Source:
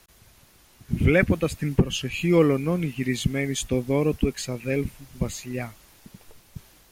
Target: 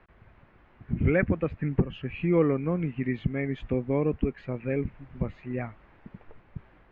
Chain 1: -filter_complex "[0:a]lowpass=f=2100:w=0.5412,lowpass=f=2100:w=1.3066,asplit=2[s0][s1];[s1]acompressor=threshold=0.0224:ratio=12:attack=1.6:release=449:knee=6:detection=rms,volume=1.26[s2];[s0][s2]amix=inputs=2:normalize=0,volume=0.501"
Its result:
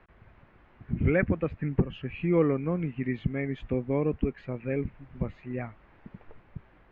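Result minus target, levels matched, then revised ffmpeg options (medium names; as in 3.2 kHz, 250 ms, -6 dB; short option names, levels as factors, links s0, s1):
compression: peak gain reduction +6 dB
-filter_complex "[0:a]lowpass=f=2100:w=0.5412,lowpass=f=2100:w=1.3066,asplit=2[s0][s1];[s1]acompressor=threshold=0.0473:ratio=12:attack=1.6:release=449:knee=6:detection=rms,volume=1.26[s2];[s0][s2]amix=inputs=2:normalize=0,volume=0.501"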